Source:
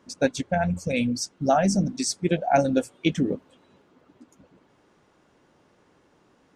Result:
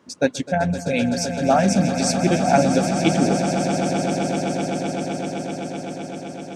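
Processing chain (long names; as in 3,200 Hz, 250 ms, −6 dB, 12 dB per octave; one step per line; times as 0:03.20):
high-pass filter 86 Hz
on a send: echo that builds up and dies away 128 ms, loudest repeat 8, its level −12 dB
on the sum: level +3 dB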